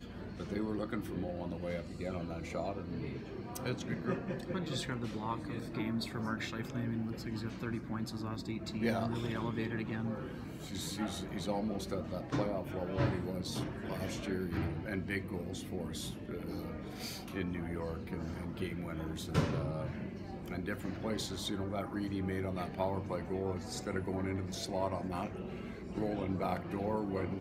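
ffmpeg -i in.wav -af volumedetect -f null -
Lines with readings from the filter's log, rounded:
mean_volume: -37.6 dB
max_volume: -17.4 dB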